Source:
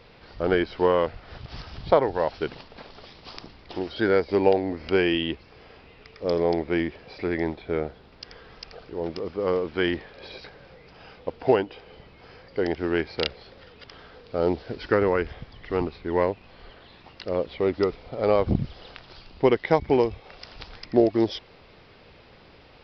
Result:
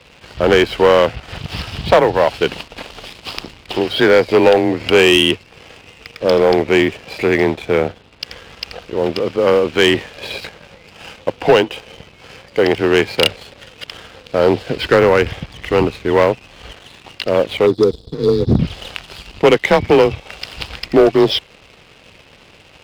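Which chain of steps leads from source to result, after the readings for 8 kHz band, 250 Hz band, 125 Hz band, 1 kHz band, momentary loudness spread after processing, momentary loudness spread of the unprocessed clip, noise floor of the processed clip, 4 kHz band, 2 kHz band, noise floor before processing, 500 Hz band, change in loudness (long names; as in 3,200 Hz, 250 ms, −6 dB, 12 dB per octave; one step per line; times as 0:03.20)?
can't be measured, +9.0 dB, +10.0 dB, +10.0 dB, 18 LU, 21 LU, −46 dBFS, +16.5 dB, +13.5 dB, −52 dBFS, +10.5 dB, +10.5 dB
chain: frequency shifter +25 Hz
parametric band 2,800 Hz +9 dB 0.64 octaves
time-frequency box erased 0:17.67–0:18.59, 500–3,300 Hz
in parallel at −6 dB: gain into a clipping stage and back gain 21 dB
on the sum: leveller curve on the samples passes 2
level +1.5 dB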